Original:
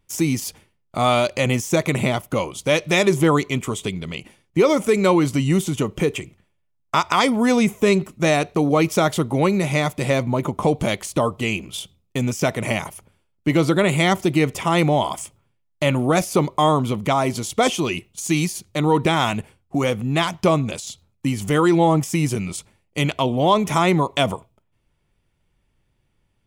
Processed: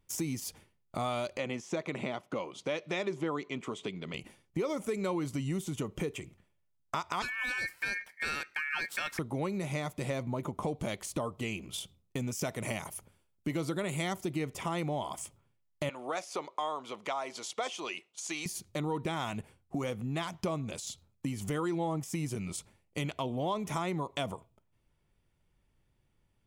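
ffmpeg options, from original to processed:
-filter_complex "[0:a]asettb=1/sr,asplit=3[a][b][c];[a]atrim=end=1.374[d];[b]atrim=start=1.37:end=4.14,asetpts=PTS-STARTPTS,afade=t=in:d=0.004:c=qsin,afade=t=out:st=2.766:d=0.004:c=qsin,highpass=210,lowpass=4.4k[e];[c]atrim=start=4.136[f];[d][e]acrossfade=d=0.004:c1=hsin:c2=qsin[g];[g][f]acrossfade=d=0.004:c1=qsin:c2=hsin,asettb=1/sr,asplit=3[h][i][j];[h]atrim=end=7.224[k];[i]atrim=start=7.22:end=9.19,asetpts=PTS-STARTPTS,afade=t=in:d=0.004:c=qsin,afade=t=out:st=1.966:d=0.004:c=qsin,aeval=exprs='val(0)*sin(2*PI*2000*n/s)':c=same[l];[j]atrim=start=9.186[m];[k][l]acrossfade=d=0.004:c1=hsin:c2=qsin[n];[n][m]acrossfade=d=0.004:c1=qsin:c2=hsin,asettb=1/sr,asplit=3[o][p][q];[o]atrim=end=12.324[r];[p]atrim=start=12.32:end=14.25,asetpts=PTS-STARTPTS,afade=t=in:d=0.004:c=qsin,afade=t=out:st=1.926:d=0.004:c=qsin,highshelf=f=5.2k:g=6[s];[q]atrim=start=14.246[t];[r][s]acrossfade=d=0.004:c1=hsin:c2=qsin[u];[u][t]acrossfade=d=0.004:c1=qsin:c2=hsin,asettb=1/sr,asplit=3[v][w][x];[v]atrim=end=15.894[y];[w]atrim=start=15.89:end=18.46,asetpts=PTS-STARTPTS,afade=t=in:d=0.004:c=qsin,afade=t=out:st=2.566:d=0.004:c=qsin,highpass=600,lowpass=6.2k[z];[x]atrim=start=18.456[aa];[y][z]acrossfade=d=0.004:c1=hsin:c2=qsin[ab];[ab][aa]acrossfade=d=0.004:c1=qsin:c2=hsin,equalizer=f=2.7k:w=1.5:g=-2,acompressor=threshold=-30dB:ratio=2.5,volume=-5.5dB"

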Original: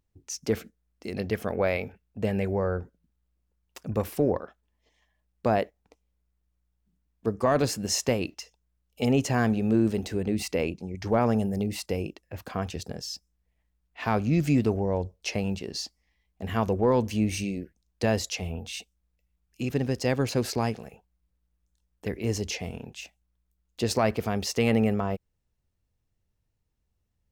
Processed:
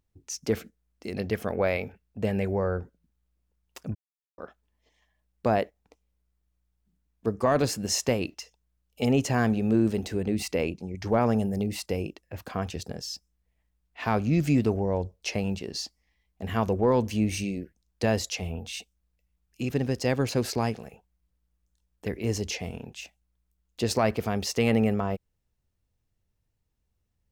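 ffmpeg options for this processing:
-filter_complex "[0:a]asplit=3[a][b][c];[a]atrim=end=3.95,asetpts=PTS-STARTPTS,afade=t=out:st=3.946:d=0.004:c=hsin[d];[b]atrim=start=3.95:end=4.38,asetpts=PTS-STARTPTS,volume=0[e];[c]atrim=start=4.38,asetpts=PTS-STARTPTS,afade=t=in:d=0.004:c=hsin[f];[d][e][f]concat=n=3:v=0:a=1"

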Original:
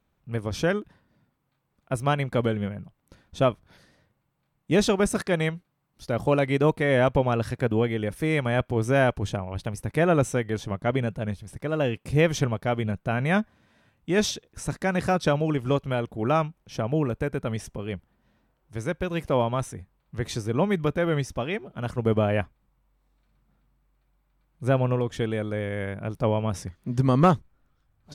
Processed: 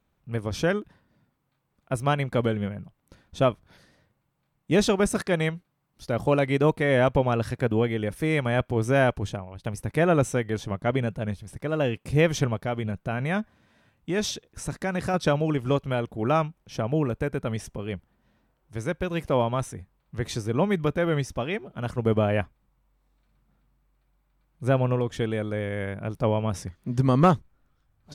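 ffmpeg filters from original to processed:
-filter_complex "[0:a]asettb=1/sr,asplit=3[a][b][c];[a]atrim=end=12.564[d];[b]atrim=start=12.56:end=15.14,asetpts=PTS-STARTPTS,afade=t=in:d=0.004:c=qsin,afade=t=out:st=2.576:d=0.004:c=qsin,acompressor=threshold=-27dB:ratio=1.5:attack=3.2:release=140:knee=1:detection=peak[e];[c]atrim=start=15.136[f];[d][e]acrossfade=d=0.004:c1=hsin:c2=qsin[g];[g][f]acrossfade=d=0.004:c1=qsin:c2=hsin,asplit=2[h][i];[h]atrim=end=9.64,asetpts=PTS-STARTPTS,afade=t=out:st=9.15:d=0.49:silence=0.211349[j];[i]atrim=start=9.64,asetpts=PTS-STARTPTS,afade=t=in:d=0.004:c=hsin:silence=0.211349[k];[j][k]concat=n=2:v=0:a=1"

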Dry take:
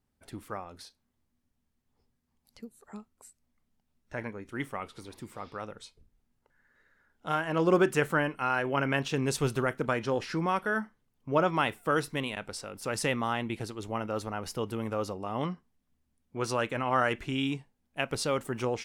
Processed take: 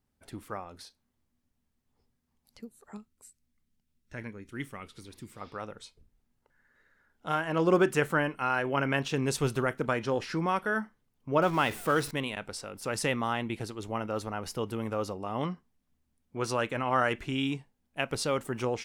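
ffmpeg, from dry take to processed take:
-filter_complex "[0:a]asettb=1/sr,asplit=3[a][b][c];[a]atrim=end=2.974[d];[b]atrim=start=2.97:end=5.41,asetpts=PTS-STARTPTS,afade=t=in:d=0.004:c=qsin,afade=t=out:st=2.436:d=0.004:c=qsin,equalizer=f=780:t=o:w=1.7:g=-10.5[e];[c]atrim=start=5.406[f];[d][e]acrossfade=d=0.004:c1=hsin:c2=qsin[g];[g][f]acrossfade=d=0.004:c1=qsin:c2=hsin,asettb=1/sr,asplit=3[h][i][j];[h]atrim=end=11.424[k];[i]atrim=start=11.42:end=12.11,asetpts=PTS-STARTPTS,afade=t=in:d=0.004:c=qsin,afade=t=out:st=0.686:d=0.004:c=qsin,aeval=exprs='val(0)+0.5*0.0126*sgn(val(0))':c=same[l];[j]atrim=start=12.106[m];[k][l]acrossfade=d=0.004:c1=hsin:c2=qsin[n];[n][m]acrossfade=d=0.004:c1=qsin:c2=hsin"

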